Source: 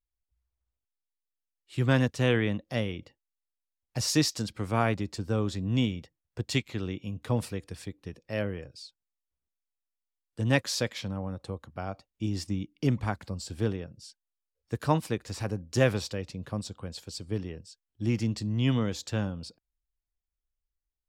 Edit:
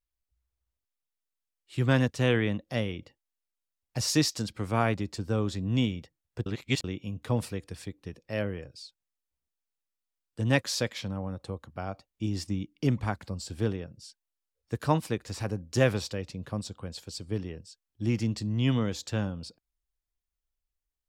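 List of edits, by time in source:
0:06.46–0:06.84: reverse

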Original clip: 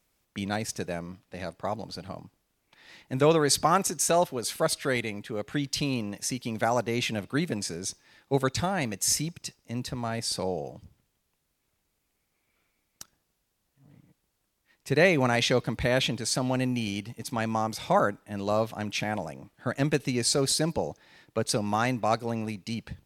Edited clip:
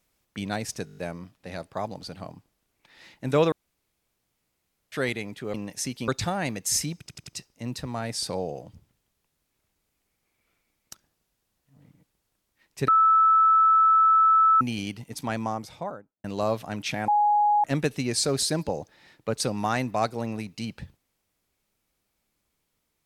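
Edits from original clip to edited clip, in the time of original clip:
0:00.85: stutter 0.02 s, 7 plays
0:03.40–0:04.80: fill with room tone
0:05.42–0:05.99: remove
0:06.53–0:08.44: remove
0:09.36: stutter 0.09 s, 4 plays
0:14.97–0:16.70: beep over 1,310 Hz −15 dBFS
0:17.33–0:18.33: fade out and dull
0:19.17–0:19.73: beep over 832 Hz −17.5 dBFS

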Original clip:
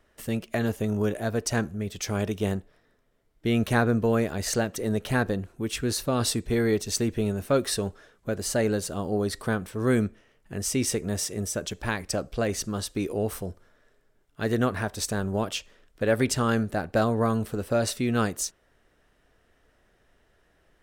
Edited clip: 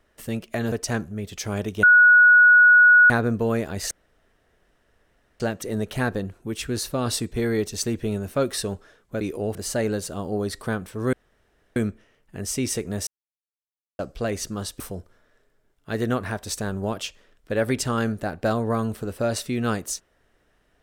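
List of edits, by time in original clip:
0:00.72–0:01.35: remove
0:02.46–0:03.73: beep over 1,460 Hz −9.5 dBFS
0:04.54: splice in room tone 1.49 s
0:09.93: splice in room tone 0.63 s
0:11.24–0:12.16: silence
0:12.97–0:13.31: move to 0:08.35

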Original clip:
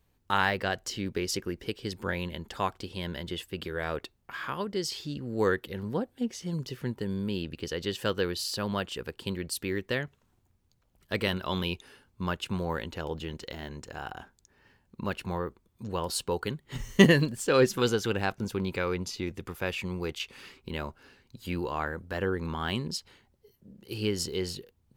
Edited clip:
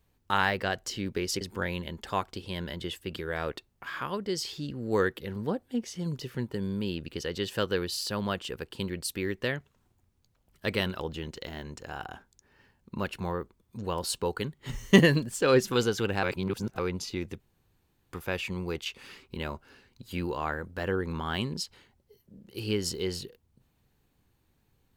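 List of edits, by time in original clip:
0:01.41–0:01.88: remove
0:11.47–0:13.06: remove
0:18.29–0:18.85: reverse
0:19.46: splice in room tone 0.72 s

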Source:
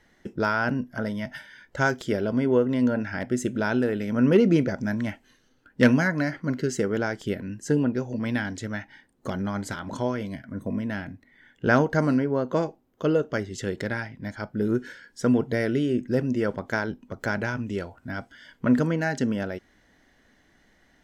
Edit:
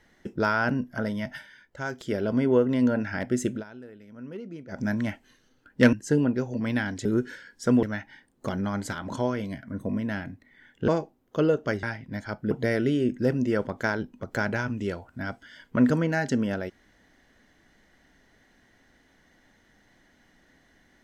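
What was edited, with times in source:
0:01.30–0:02.31: duck −10.5 dB, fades 0.47 s
0:03.52–0:04.80: duck −20.5 dB, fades 0.12 s
0:05.93–0:07.52: remove
0:11.69–0:12.54: remove
0:13.49–0:13.94: remove
0:14.62–0:15.40: move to 0:08.64

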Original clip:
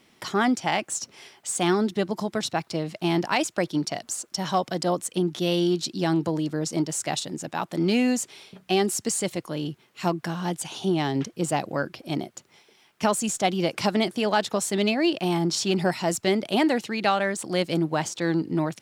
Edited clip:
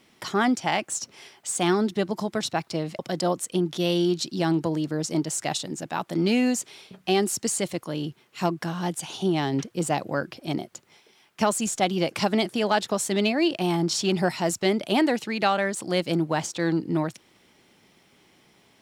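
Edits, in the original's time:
0:02.99–0:04.61: remove

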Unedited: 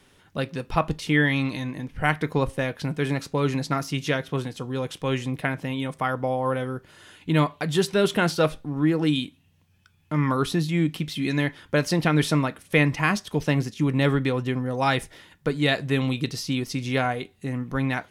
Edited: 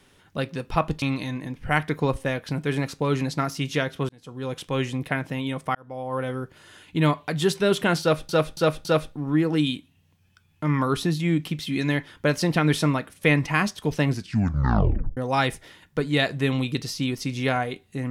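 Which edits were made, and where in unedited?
0:01.02–0:01.35: remove
0:04.42–0:04.91: fade in
0:06.08–0:06.67: fade in
0:08.34–0:08.62: repeat, 4 plays
0:13.58: tape stop 1.08 s

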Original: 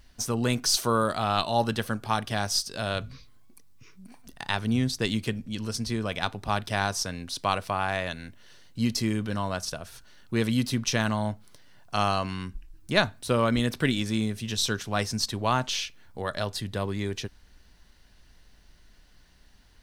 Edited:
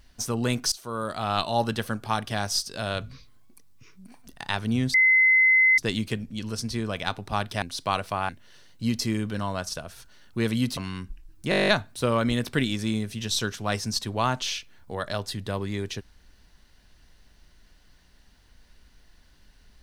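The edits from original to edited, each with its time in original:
0:00.72–0:01.37: fade in, from −22 dB
0:04.94: insert tone 2,050 Hz −15 dBFS 0.84 s
0:06.78–0:07.20: remove
0:07.87–0:08.25: remove
0:10.73–0:12.22: remove
0:12.95: stutter 0.02 s, 10 plays

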